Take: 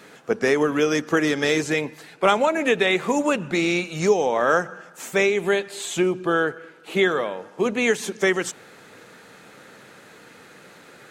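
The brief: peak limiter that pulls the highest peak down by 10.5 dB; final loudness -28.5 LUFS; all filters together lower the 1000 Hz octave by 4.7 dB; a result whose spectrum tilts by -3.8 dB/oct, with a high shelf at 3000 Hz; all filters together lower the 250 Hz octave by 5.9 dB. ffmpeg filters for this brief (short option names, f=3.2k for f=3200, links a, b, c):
-af "equalizer=f=250:t=o:g=-8.5,equalizer=f=1k:t=o:g=-5.5,highshelf=f=3k:g=-3.5,alimiter=limit=-17.5dB:level=0:latency=1"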